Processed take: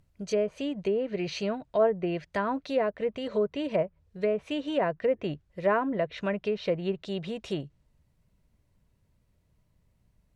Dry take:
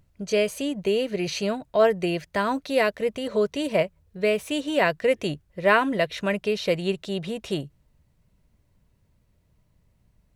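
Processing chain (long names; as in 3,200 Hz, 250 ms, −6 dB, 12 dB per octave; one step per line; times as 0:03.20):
treble cut that deepens with the level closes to 1,100 Hz, closed at −18.5 dBFS
level −4 dB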